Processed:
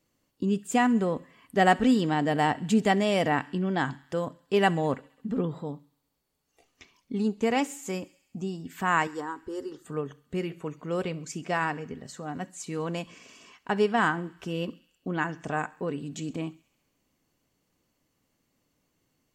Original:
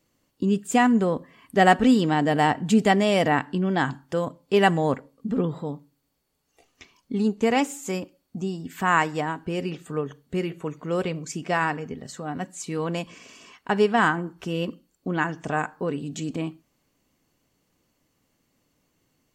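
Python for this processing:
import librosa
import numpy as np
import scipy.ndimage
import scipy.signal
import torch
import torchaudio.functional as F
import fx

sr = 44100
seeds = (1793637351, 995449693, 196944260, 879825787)

y = fx.fixed_phaser(x, sr, hz=660.0, stages=6, at=(9.07, 9.85))
y = fx.echo_wet_highpass(y, sr, ms=67, feedback_pct=68, hz=1800.0, wet_db=-21.5)
y = y * 10.0 ** (-4.0 / 20.0)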